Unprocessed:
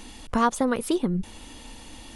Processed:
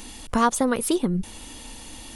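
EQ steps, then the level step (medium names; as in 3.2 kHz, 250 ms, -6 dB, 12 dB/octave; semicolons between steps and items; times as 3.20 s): treble shelf 6.9 kHz +9.5 dB; +1.5 dB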